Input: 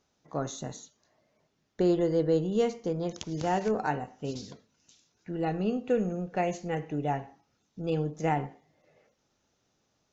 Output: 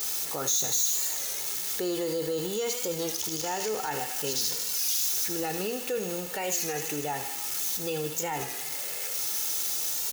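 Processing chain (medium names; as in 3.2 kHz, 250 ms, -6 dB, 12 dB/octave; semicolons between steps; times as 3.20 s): jump at every zero crossing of -42 dBFS; tilt EQ +3 dB/octave; comb 2.3 ms, depth 44%; feedback echo behind a high-pass 78 ms, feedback 82%, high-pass 2.5 kHz, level -9.5 dB; in parallel at -2 dB: compressor with a negative ratio -31 dBFS; on the sum: saturation -12 dBFS, distortion -27 dB; peak limiter -20.5 dBFS, peak gain reduction 8 dB; treble shelf 6.4 kHz +12 dB; warped record 33 1/3 rpm, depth 100 cents; trim -3 dB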